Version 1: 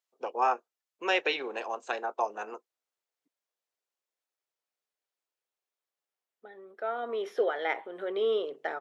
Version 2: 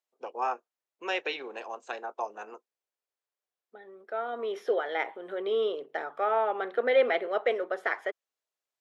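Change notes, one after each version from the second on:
first voice -4.0 dB; second voice: entry -2.70 s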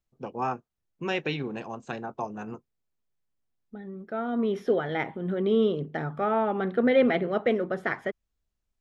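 master: remove HPF 440 Hz 24 dB/oct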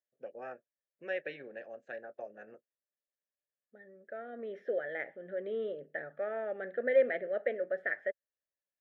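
master: add double band-pass 1000 Hz, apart 1.6 oct

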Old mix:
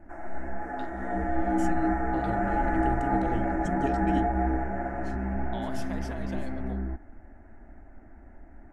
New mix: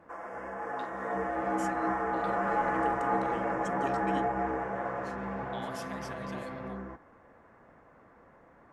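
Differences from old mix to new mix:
background: remove fixed phaser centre 730 Hz, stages 8; master: add HPF 740 Hz 6 dB/oct

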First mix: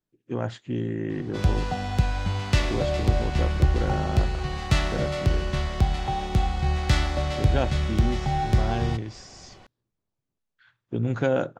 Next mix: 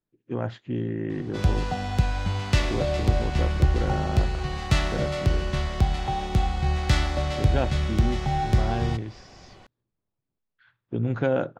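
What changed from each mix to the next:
speech: add air absorption 150 m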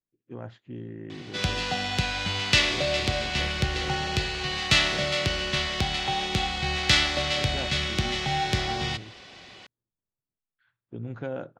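speech -10.0 dB; background: add weighting filter D

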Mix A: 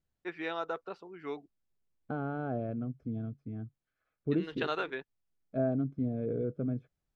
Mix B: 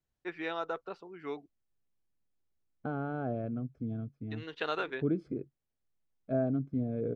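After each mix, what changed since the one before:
second voice: entry +0.75 s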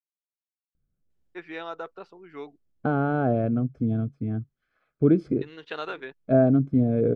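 first voice: entry +1.10 s; second voice +11.5 dB

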